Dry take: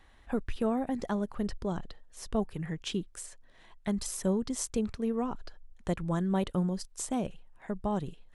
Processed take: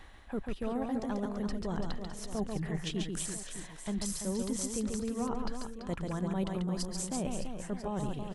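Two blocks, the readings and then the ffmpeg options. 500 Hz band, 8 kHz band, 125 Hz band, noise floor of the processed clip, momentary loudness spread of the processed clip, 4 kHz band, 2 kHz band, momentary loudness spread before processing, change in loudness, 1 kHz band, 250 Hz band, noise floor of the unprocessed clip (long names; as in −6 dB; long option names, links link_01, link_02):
−3.0 dB, +1.5 dB, −1.5 dB, −48 dBFS, 7 LU, +1.0 dB, −0.5 dB, 11 LU, −2.5 dB, −2.5 dB, −2.5 dB, −58 dBFS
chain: -af "areverse,acompressor=threshold=-42dB:ratio=5,areverse,aecho=1:1:140|336|610.4|994.6|1532:0.631|0.398|0.251|0.158|0.1,volume=8dB"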